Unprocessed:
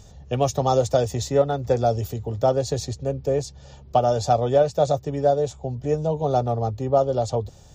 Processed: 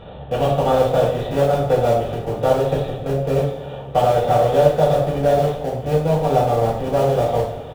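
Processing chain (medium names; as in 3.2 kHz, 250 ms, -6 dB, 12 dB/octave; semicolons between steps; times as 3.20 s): spectral levelling over time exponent 0.6; resampled via 8 kHz; in parallel at -9 dB: Schmitt trigger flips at -16.5 dBFS; on the sum: two-slope reverb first 0.51 s, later 2 s, from -16 dB, DRR -7.5 dB; trim -7.5 dB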